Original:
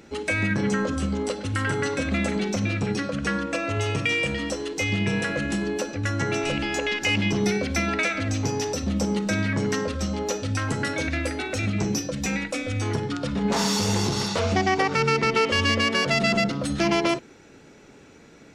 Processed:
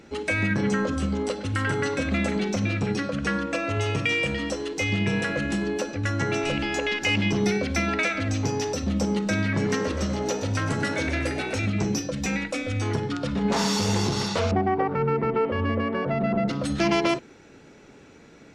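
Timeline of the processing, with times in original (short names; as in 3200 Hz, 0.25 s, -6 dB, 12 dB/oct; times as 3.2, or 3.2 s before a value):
9.41–11.59 frequency-shifting echo 0.125 s, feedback 59%, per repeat +61 Hz, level -10 dB
14.51–16.48 LPF 1100 Hz
whole clip: high shelf 8200 Hz -7 dB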